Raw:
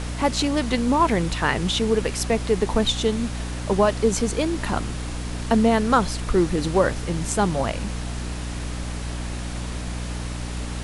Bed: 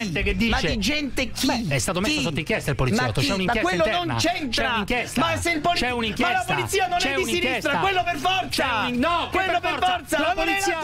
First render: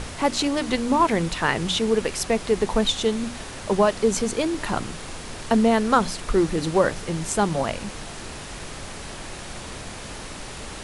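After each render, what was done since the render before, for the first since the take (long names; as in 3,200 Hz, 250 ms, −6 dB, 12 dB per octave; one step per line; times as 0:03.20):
mains-hum notches 60/120/180/240/300 Hz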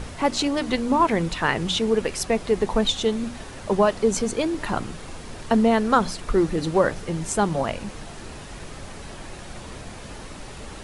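broadband denoise 6 dB, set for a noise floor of −37 dBFS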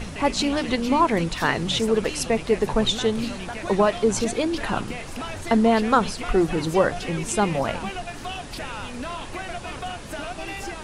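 mix in bed −12 dB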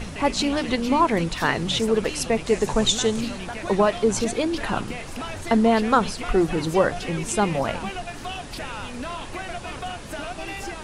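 0:02.46–0:03.21: parametric band 7,100 Hz +10.5 dB 0.83 octaves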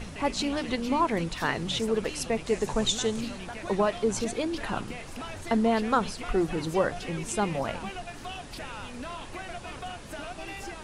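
level −6 dB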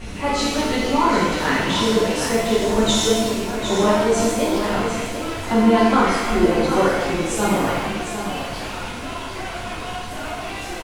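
on a send: single-tap delay 755 ms −8.5 dB
on the sum: reverb with rising layers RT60 1.1 s, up +7 semitones, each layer −8 dB, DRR −7.5 dB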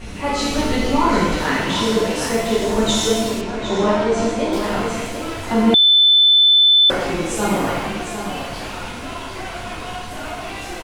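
0:00.49–0:01.43: low-shelf EQ 140 Hz +8.5 dB
0:03.41–0:04.53: high-frequency loss of the air 83 metres
0:05.74–0:06.90: beep over 3,520 Hz −8.5 dBFS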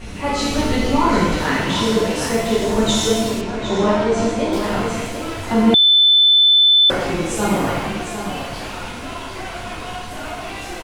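dynamic equaliser 110 Hz, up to +4 dB, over −34 dBFS, Q 1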